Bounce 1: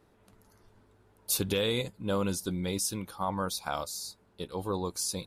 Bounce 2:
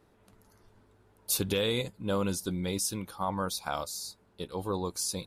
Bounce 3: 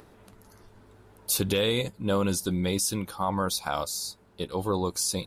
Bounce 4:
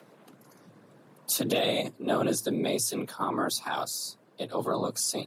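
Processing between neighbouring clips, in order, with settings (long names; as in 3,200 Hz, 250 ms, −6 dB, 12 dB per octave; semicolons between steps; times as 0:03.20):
no processing that can be heard
in parallel at +2 dB: brickwall limiter −23.5 dBFS, peak gain reduction 8 dB; on the sum: upward compression, threshold −46 dBFS; level −1.5 dB
random phases in short frames; frequency shifter +110 Hz; level −1.5 dB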